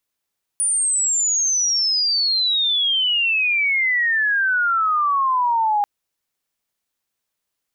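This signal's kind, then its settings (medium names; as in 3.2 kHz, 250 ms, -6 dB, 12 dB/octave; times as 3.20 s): sweep logarithmic 9.5 kHz -> 810 Hz -16.5 dBFS -> -15.5 dBFS 5.24 s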